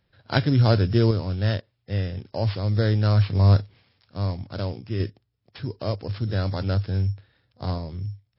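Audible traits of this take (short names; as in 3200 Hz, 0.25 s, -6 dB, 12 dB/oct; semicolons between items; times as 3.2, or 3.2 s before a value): a buzz of ramps at a fixed pitch in blocks of 8 samples; random-step tremolo 1.8 Hz; MP3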